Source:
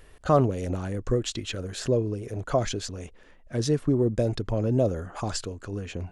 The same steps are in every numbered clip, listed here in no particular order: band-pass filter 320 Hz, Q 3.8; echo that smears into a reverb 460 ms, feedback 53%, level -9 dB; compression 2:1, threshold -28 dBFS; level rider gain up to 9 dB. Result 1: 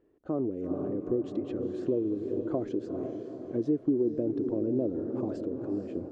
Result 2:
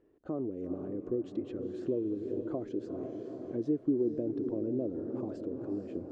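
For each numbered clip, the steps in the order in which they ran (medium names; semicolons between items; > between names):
echo that smears into a reverb > level rider > band-pass filter > compression; level rider > echo that smears into a reverb > compression > band-pass filter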